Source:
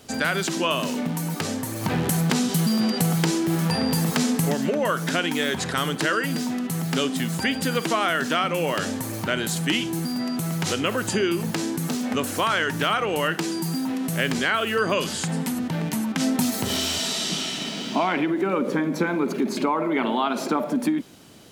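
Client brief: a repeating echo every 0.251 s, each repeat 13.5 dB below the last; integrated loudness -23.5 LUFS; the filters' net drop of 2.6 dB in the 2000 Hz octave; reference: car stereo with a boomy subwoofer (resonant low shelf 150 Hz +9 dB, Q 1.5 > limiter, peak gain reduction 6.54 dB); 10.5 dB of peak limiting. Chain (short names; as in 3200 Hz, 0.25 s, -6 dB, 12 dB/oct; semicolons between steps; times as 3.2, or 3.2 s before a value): bell 2000 Hz -3.5 dB; limiter -19.5 dBFS; resonant low shelf 150 Hz +9 dB, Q 1.5; feedback echo 0.251 s, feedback 21%, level -13.5 dB; gain +6 dB; limiter -15 dBFS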